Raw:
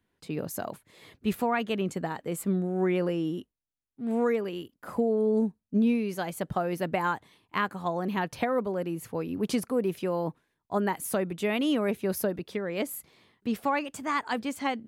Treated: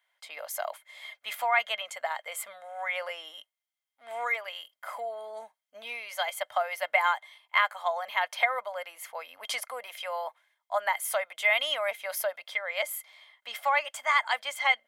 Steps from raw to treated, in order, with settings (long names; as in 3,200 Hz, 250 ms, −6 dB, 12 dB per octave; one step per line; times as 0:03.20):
elliptic high-pass filter 600 Hz, stop band 40 dB
hollow resonant body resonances 2,100/3,200 Hz, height 17 dB, ringing for 45 ms
level +3 dB